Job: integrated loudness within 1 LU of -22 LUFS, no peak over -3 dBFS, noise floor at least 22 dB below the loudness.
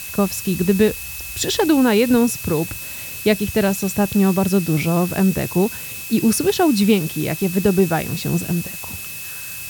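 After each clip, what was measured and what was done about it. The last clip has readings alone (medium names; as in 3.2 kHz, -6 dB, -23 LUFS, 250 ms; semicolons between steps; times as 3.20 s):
steady tone 2.6 kHz; tone level -35 dBFS; noise floor -31 dBFS; noise floor target -41 dBFS; loudness -19.0 LUFS; peak level -3.0 dBFS; loudness target -22.0 LUFS
-> band-stop 2.6 kHz, Q 30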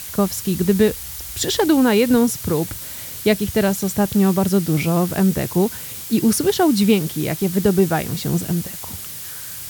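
steady tone not found; noise floor -32 dBFS; noise floor target -41 dBFS
-> noise reduction 9 dB, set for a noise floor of -32 dBFS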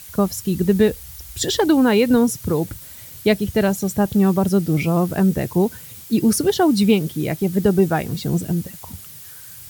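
noise floor -39 dBFS; noise floor target -41 dBFS
-> noise reduction 6 dB, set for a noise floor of -39 dBFS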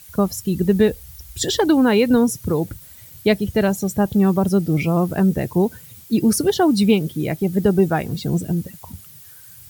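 noise floor -43 dBFS; loudness -19.0 LUFS; peak level -3.5 dBFS; loudness target -22.0 LUFS
-> trim -3 dB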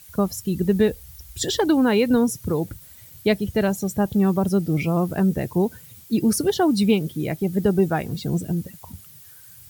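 loudness -22.0 LUFS; peak level -6.5 dBFS; noise floor -46 dBFS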